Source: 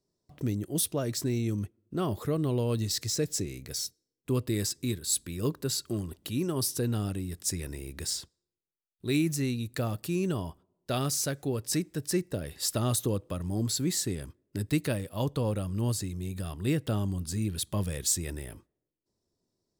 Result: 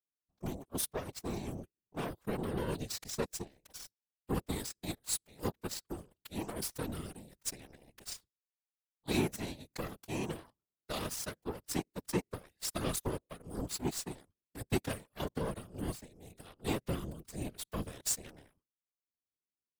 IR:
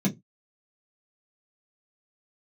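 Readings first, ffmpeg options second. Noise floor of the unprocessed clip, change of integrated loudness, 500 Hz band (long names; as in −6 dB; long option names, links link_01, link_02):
below −85 dBFS, −8.0 dB, −7.0 dB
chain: -af "aeval=exprs='0.188*(cos(1*acos(clip(val(0)/0.188,-1,1)))-cos(1*PI/2))+0.00168*(cos(5*acos(clip(val(0)/0.188,-1,1)))-cos(5*PI/2))+0.00473*(cos(6*acos(clip(val(0)/0.188,-1,1)))-cos(6*PI/2))+0.0299*(cos(7*acos(clip(val(0)/0.188,-1,1)))-cos(7*PI/2))':channel_layout=same,afftfilt=real='hypot(re,im)*cos(2*PI*random(0))':imag='hypot(re,im)*sin(2*PI*random(1))':win_size=512:overlap=0.75,volume=1dB"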